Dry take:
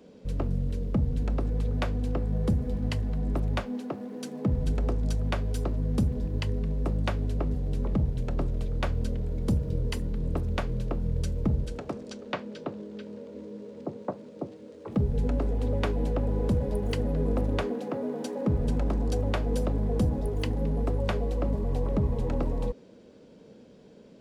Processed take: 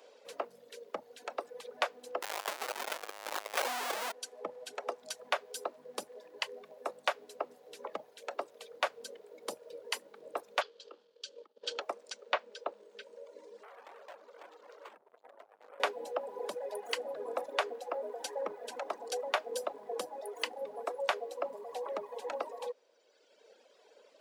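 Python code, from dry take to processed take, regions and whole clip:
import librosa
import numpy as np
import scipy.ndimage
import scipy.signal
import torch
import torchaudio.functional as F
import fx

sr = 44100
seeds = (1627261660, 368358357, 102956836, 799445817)

y = fx.chain(x, sr, fx.cvsd(bps=16000),
    fx.schmitt(flips_db=-42.5), at=(2.22, 4.12))
y = fx.chain(y, sr, fx.over_compress(threshold_db=-31.0, ratio=-0.5),
    fx.cabinet(low_hz=250.0, low_slope=12, high_hz=6800.0, hz=(690.0, 1000.0, 2100.0, 3200.0, 4500.0), db=(-10, -4, -6, 9, 7)), at=(10.61, 11.82))
y = fx.chain(y, sr, fx.over_compress(threshold_db=-33.0, ratio=-1.0),
    fx.tube_stage(drive_db=44.0, bias=0.55),
    fx.resample_linear(factor=4), at=(13.63, 15.8))
y = fx.dereverb_blind(y, sr, rt60_s=1.7)
y = scipy.signal.sosfilt(scipy.signal.butter(4, 550.0, 'highpass', fs=sr, output='sos'), y)
y = y * 10.0 ** (3.0 / 20.0)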